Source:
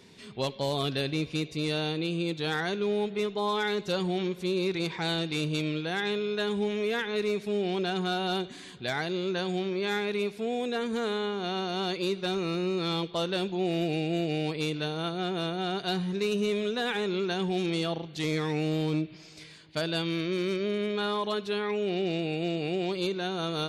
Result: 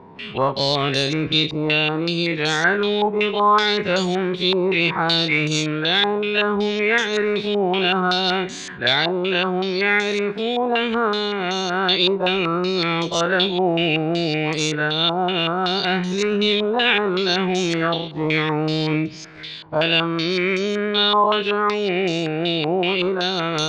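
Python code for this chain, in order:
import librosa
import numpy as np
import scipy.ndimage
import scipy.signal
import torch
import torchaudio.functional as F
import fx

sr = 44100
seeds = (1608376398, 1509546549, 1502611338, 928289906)

y = fx.spec_dilate(x, sr, span_ms=60)
y = fx.filter_held_lowpass(y, sr, hz=5.3, low_hz=930.0, high_hz=6400.0)
y = y * 10.0 ** (6.0 / 20.0)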